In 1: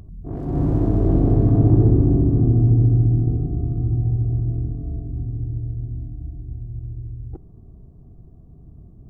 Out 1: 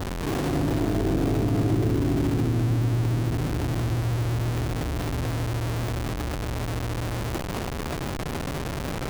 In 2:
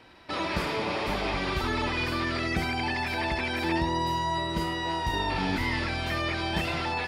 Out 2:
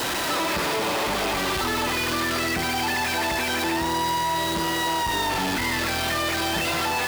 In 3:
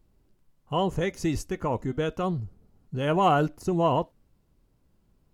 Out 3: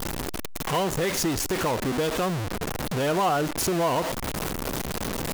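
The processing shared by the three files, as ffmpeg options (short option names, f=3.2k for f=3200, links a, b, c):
-af "aeval=exprs='val(0)+0.5*0.0944*sgn(val(0))':c=same,lowshelf=f=160:g=-10,acompressor=threshold=-27dB:ratio=2,adynamicequalizer=threshold=0.00501:dfrequency=2300:dqfactor=7.8:tfrequency=2300:tqfactor=7.8:attack=5:release=100:ratio=0.375:range=2:mode=cutabove:tftype=bell,volume=2dB"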